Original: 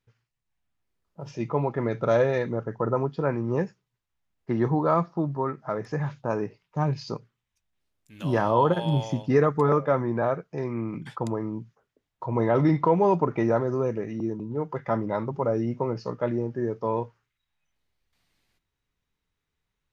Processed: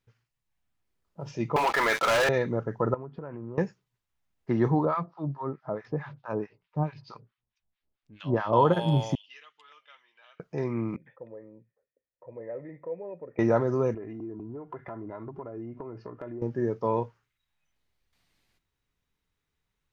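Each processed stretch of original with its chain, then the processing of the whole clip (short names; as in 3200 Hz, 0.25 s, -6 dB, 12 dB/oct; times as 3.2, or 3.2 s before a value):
1.56–2.29 HPF 1200 Hz + sample leveller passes 5 + fast leveller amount 50%
2.94–3.58 LPF 1600 Hz + compressor 10:1, threshold -34 dBFS + Doppler distortion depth 0.19 ms
4.85–8.53 LPF 4600 Hz 24 dB/oct + harmonic tremolo 4.6 Hz, depth 100%, crossover 940 Hz
9.15–10.4 ladder band-pass 3100 Hz, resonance 85% + comb 6.4 ms, depth 30%
10.96–13.39 compressor 1.5:1, threshold -34 dBFS + vocal tract filter e
13.94–16.42 LPF 1800 Hz + compressor 10:1, threshold -35 dBFS + comb 2.9 ms, depth 50%
whole clip: dry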